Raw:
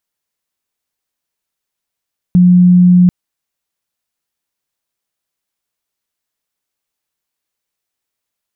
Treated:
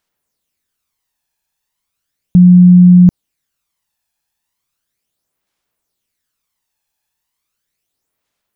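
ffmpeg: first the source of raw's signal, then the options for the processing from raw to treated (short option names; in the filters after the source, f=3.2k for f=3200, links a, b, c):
-f lavfi -i "sine=f=179:d=0.74:r=44100,volume=14.56dB"
-af "aphaser=in_gain=1:out_gain=1:delay=1.2:decay=0.52:speed=0.36:type=sinusoidal,alimiter=level_in=3dB:limit=-1dB:release=50:level=0:latency=1"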